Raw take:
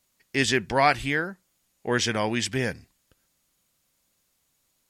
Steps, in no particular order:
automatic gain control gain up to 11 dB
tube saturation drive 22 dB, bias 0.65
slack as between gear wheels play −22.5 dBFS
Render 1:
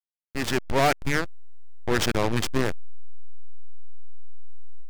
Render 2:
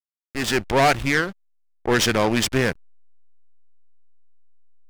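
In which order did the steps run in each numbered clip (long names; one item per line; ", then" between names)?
tube saturation, then slack as between gear wheels, then automatic gain control
tube saturation, then automatic gain control, then slack as between gear wheels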